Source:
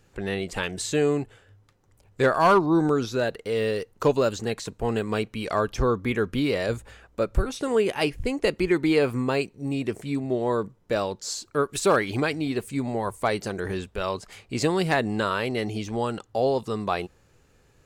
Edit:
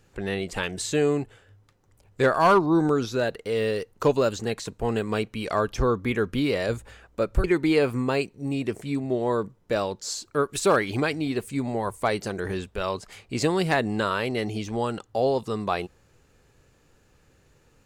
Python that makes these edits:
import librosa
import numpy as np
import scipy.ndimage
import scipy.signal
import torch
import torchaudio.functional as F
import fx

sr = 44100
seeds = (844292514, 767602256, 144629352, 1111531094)

y = fx.edit(x, sr, fx.cut(start_s=7.44, length_s=1.2), tone=tone)